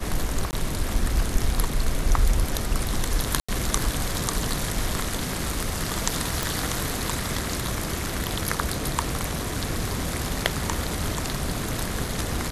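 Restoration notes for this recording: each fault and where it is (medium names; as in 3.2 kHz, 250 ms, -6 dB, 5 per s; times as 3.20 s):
0.51–0.53 s: dropout 19 ms
3.40–3.48 s: dropout 85 ms
6.43 s: pop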